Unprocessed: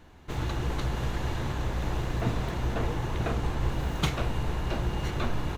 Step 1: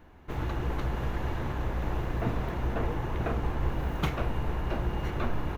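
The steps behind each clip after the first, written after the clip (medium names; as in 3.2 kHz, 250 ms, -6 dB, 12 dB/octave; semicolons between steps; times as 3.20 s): graphic EQ 125/4000/8000 Hz -3/-7/-11 dB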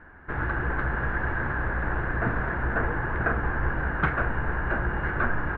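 resonant low-pass 1.6 kHz, resonance Q 7.2; trim +1.5 dB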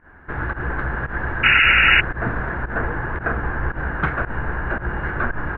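volume shaper 113 bpm, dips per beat 1, -18 dB, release 107 ms; painted sound noise, 1.43–2.01 s, 1.3–2.9 kHz -17 dBFS; trim +3 dB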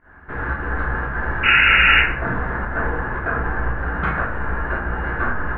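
plate-style reverb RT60 0.6 s, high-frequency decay 0.6×, DRR -3.5 dB; trim -4 dB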